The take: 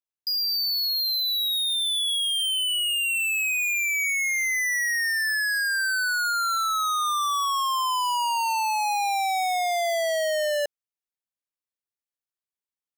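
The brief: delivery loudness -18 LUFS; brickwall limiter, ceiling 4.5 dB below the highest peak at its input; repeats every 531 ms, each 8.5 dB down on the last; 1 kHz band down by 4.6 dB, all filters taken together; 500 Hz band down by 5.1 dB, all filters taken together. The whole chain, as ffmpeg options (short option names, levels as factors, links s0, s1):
-af "equalizer=f=500:t=o:g=-5,equalizer=f=1000:t=o:g=-4.5,alimiter=level_in=1.33:limit=0.0631:level=0:latency=1,volume=0.75,aecho=1:1:531|1062|1593|2124:0.376|0.143|0.0543|0.0206,volume=2.82"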